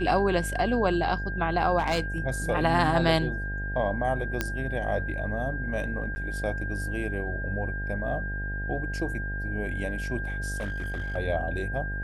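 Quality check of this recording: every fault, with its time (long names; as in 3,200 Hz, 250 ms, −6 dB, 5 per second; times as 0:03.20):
mains buzz 50 Hz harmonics 17 −33 dBFS
whistle 1,600 Hz −34 dBFS
0:01.78–0:02.18: clipping −21 dBFS
0:04.41: click −11 dBFS
0:06.15–0:06.16: drop-out 10 ms
0:10.57–0:11.17: clipping −27.5 dBFS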